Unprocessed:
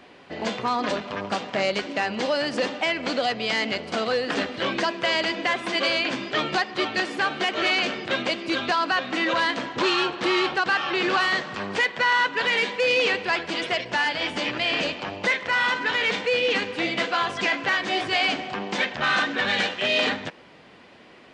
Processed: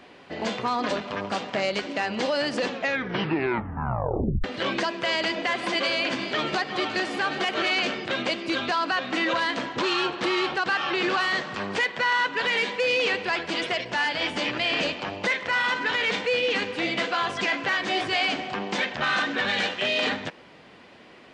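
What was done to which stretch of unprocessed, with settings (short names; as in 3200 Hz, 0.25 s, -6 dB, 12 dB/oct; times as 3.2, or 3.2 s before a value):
2.6 tape stop 1.84 s
5.18–7.64 echo with dull and thin repeats by turns 0.178 s, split 1100 Hz, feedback 62%, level -9 dB
whole clip: limiter -16 dBFS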